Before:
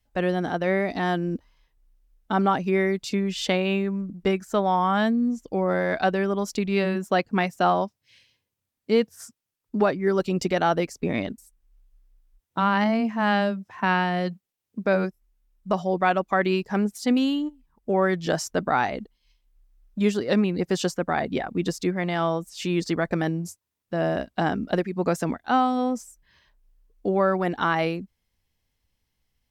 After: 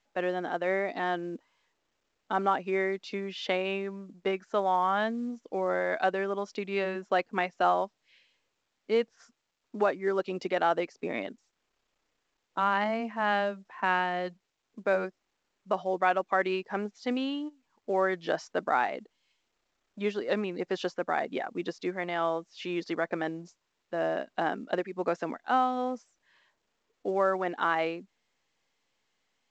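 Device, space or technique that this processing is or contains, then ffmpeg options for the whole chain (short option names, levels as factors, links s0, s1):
telephone: -af "highpass=350,lowpass=3300,volume=0.668" -ar 16000 -c:a pcm_mulaw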